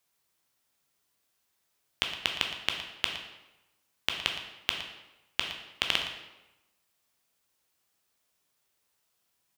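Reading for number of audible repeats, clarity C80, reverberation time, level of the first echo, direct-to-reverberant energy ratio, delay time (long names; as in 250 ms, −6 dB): 1, 7.5 dB, 1.0 s, −13.5 dB, 2.0 dB, 115 ms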